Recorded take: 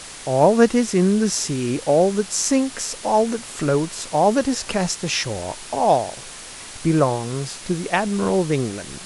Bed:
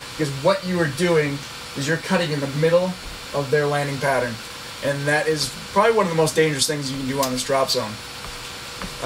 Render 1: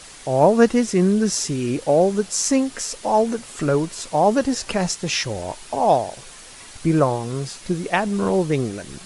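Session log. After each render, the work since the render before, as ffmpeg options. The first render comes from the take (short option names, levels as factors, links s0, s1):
-af "afftdn=nr=6:nf=-37"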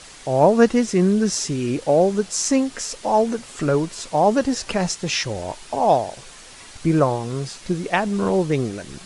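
-af "lowpass=9000"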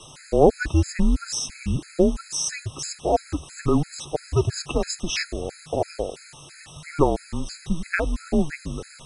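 -af "afreqshift=-160,afftfilt=real='re*gt(sin(2*PI*3*pts/sr)*(1-2*mod(floor(b*sr/1024/1300),2)),0)':imag='im*gt(sin(2*PI*3*pts/sr)*(1-2*mod(floor(b*sr/1024/1300),2)),0)':win_size=1024:overlap=0.75"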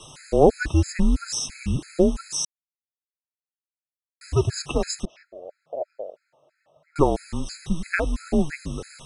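-filter_complex "[0:a]asettb=1/sr,asplit=3[s0][s1][s2];[s0]atrim=end=5.054[s3];[s1]atrim=start=5.05:end=6.96,asetpts=PTS-STARTPTS,afade=t=in:d=0.004:c=qsin,afade=t=out:st=1.906:d=0.004:c=qsin,bandpass=f=600:t=q:w=6.1[s4];[s2]atrim=start=6.956[s5];[s3][s4]acrossfade=d=0.004:c1=hsin:c2=qsin[s6];[s6][s5]acrossfade=d=0.004:c1=qsin:c2=hsin,asplit=3[s7][s8][s9];[s7]atrim=end=2.45,asetpts=PTS-STARTPTS,afade=t=out:st=2.446:d=0.004:c=hsin[s10];[s8]atrim=start=2.45:end=4.21,asetpts=PTS-STARTPTS,volume=0[s11];[s9]atrim=start=4.21,asetpts=PTS-STARTPTS,afade=t=in:d=0.004:c=hsin[s12];[s10][s11][s12]concat=n=3:v=0:a=1"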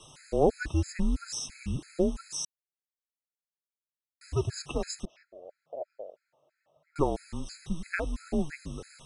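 -af "volume=0.398"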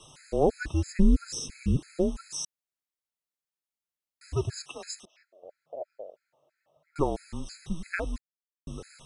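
-filter_complex "[0:a]asettb=1/sr,asplit=3[s0][s1][s2];[s0]atrim=end=0.834[s3];[s1]atrim=start=0.83:end=1.77,asetpts=PTS-STARTPTS,afade=t=in:d=0.004:c=qsin,afade=t=out:st=0.936:d=0.004:c=qsin,lowshelf=f=570:t=q:w=3:g=7[s4];[s2]atrim=start=1.766[s5];[s3][s4]acrossfade=d=0.004:c1=hsin:c2=qsin[s6];[s6][s5]acrossfade=d=0.004:c1=qsin:c2=hsin,asettb=1/sr,asplit=3[s7][s8][s9];[s7]atrim=end=4.544[s10];[s8]atrim=start=4.54:end=5.43,asetpts=PTS-STARTPTS,afade=t=in:d=0.004:c=qsin,afade=t=out:st=0.886:d=0.004:c=qsin,highpass=f=1500:p=1[s11];[s9]atrim=start=5.426[s12];[s10][s11]acrossfade=d=0.004:c1=hsin:c2=qsin[s13];[s13][s12]acrossfade=d=0.004:c1=qsin:c2=hsin,asplit=3[s14][s15][s16];[s14]atrim=end=8.18,asetpts=PTS-STARTPTS,afade=t=out:st=8.176:d=0.004:c=hsin[s17];[s15]atrim=start=8.18:end=8.67,asetpts=PTS-STARTPTS,volume=0[s18];[s16]atrim=start=8.67,asetpts=PTS-STARTPTS,afade=t=in:d=0.004:c=hsin[s19];[s17][s18][s19]concat=n=3:v=0:a=1"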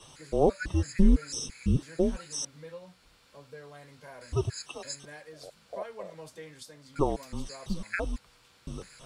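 -filter_complex "[1:a]volume=0.0422[s0];[0:a][s0]amix=inputs=2:normalize=0"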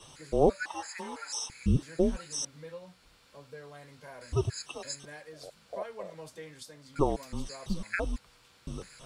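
-filter_complex "[0:a]asettb=1/sr,asplit=3[s0][s1][s2];[s0]atrim=end=0.634[s3];[s1]atrim=start=0.63:end=1.5,asetpts=PTS-STARTPTS,afade=t=in:d=0.004:c=qsin,afade=t=out:st=0.866:d=0.004:c=qsin,highpass=f=860:t=q:w=7.1[s4];[s2]atrim=start=1.496[s5];[s3][s4]acrossfade=d=0.004:c1=hsin:c2=qsin[s6];[s6][s5]acrossfade=d=0.004:c1=qsin:c2=hsin"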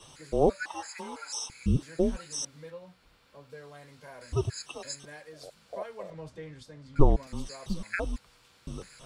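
-filter_complex "[0:a]asettb=1/sr,asplit=3[s0][s1][s2];[s0]atrim=end=0.884[s3];[s1]atrim=start=0.88:end=1.81,asetpts=PTS-STARTPTS,afade=t=in:d=0.004:c=qsin,afade=t=out:st=0.926:d=0.004:c=qsin,bandreject=f=1800:w=7.9[s4];[s2]atrim=start=1.806[s5];[s3][s4]acrossfade=d=0.004:c1=hsin:c2=qsin[s6];[s6][s5]acrossfade=d=0.004:c1=qsin:c2=hsin,asettb=1/sr,asplit=3[s7][s8][s9];[s7]atrim=end=2.704[s10];[s8]atrim=start=2.7:end=3.5,asetpts=PTS-STARTPTS,afade=t=in:d=0.004:c=qsin,afade=t=out:st=0.796:d=0.004:c=qsin,equalizer=f=7800:t=o:w=1.9:g=-7[s11];[s9]atrim=start=3.496[s12];[s10][s11]acrossfade=d=0.004:c1=hsin:c2=qsin[s13];[s13][s12]acrossfade=d=0.004:c1=qsin:c2=hsin,asettb=1/sr,asplit=3[s14][s15][s16];[s14]atrim=end=6.104[s17];[s15]atrim=start=6.1:end=7.27,asetpts=PTS-STARTPTS,afade=t=in:d=0.004:c=qsin,afade=t=out:st=1.166:d=0.004:c=qsin,aemphasis=mode=reproduction:type=bsi[s18];[s16]atrim=start=7.266[s19];[s17][s18]acrossfade=d=0.004:c1=hsin:c2=qsin[s20];[s20][s19]acrossfade=d=0.004:c1=qsin:c2=hsin"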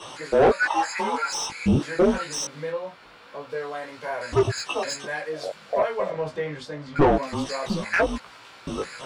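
-filter_complex "[0:a]flanger=delay=17.5:depth=3.1:speed=0.24,asplit=2[s0][s1];[s1]highpass=f=720:p=1,volume=31.6,asoftclip=type=tanh:threshold=0.422[s2];[s0][s2]amix=inputs=2:normalize=0,lowpass=f=1500:p=1,volume=0.501"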